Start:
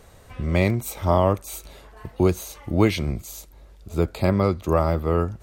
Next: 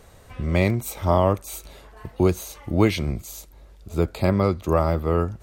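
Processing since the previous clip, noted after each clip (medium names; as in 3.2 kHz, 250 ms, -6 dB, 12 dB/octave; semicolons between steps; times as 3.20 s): no audible change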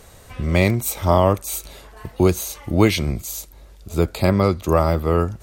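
peaking EQ 13 kHz +6 dB 2.6 oct; trim +3 dB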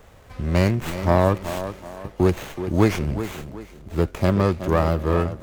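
tape echo 376 ms, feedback 41%, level -9 dB, low-pass 2.8 kHz; sliding maximum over 9 samples; trim -2.5 dB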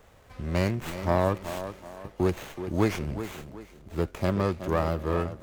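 bass shelf 220 Hz -3 dB; trim -5.5 dB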